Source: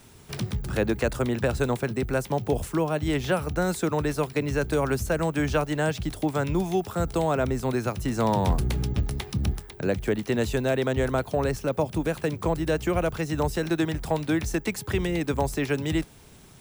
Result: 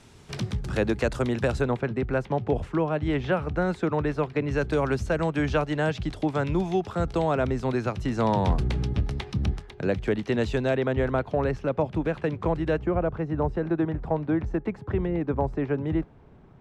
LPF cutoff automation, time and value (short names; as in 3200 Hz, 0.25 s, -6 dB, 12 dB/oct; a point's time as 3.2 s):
6900 Hz
from 1.61 s 2600 Hz
from 4.51 s 4400 Hz
from 10.77 s 2600 Hz
from 12.79 s 1200 Hz